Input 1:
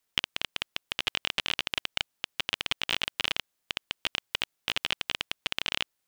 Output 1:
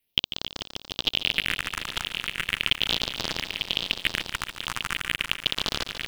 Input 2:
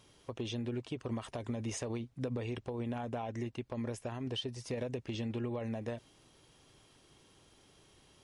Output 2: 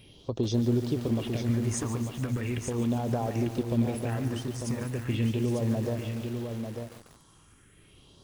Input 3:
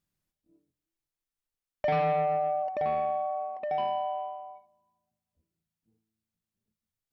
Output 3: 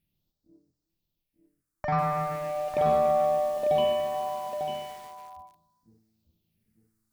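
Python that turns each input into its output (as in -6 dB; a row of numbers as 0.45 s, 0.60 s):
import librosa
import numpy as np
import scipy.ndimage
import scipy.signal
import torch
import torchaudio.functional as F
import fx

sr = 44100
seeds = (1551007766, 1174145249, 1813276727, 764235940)

y = fx.phaser_stages(x, sr, stages=4, low_hz=480.0, high_hz=2500.0, hz=0.38, feedback_pct=40)
y = fx.rider(y, sr, range_db=4, speed_s=2.0)
y = y + 10.0 ** (-6.5 / 20.0) * np.pad(y, (int(897 * sr / 1000.0), 0))[:len(y)]
y = fx.echo_crushed(y, sr, ms=144, feedback_pct=80, bits=8, wet_db=-11)
y = y * 10.0 ** (-30 / 20.0) / np.sqrt(np.mean(np.square(y)))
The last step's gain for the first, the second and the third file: +5.5 dB, +8.5 dB, +7.0 dB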